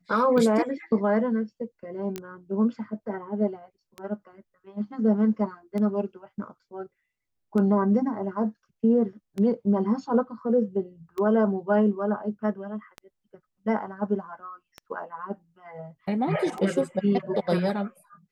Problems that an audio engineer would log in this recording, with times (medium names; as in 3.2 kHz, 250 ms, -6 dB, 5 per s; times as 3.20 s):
tick 33 1/3 rpm -21 dBFS
2.16 s: pop -18 dBFS